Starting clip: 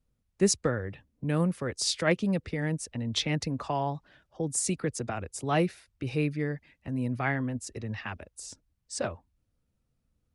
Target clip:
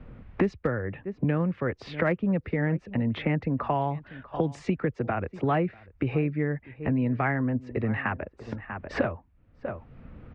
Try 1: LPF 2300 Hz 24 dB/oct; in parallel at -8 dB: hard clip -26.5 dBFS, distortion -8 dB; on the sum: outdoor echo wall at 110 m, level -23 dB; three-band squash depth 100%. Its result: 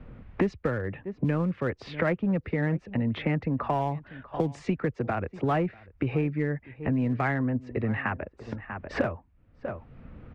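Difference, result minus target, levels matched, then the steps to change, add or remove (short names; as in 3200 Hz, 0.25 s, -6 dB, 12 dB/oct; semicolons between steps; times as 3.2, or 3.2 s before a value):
hard clip: distortion +17 dB
change: hard clip -16.5 dBFS, distortion -25 dB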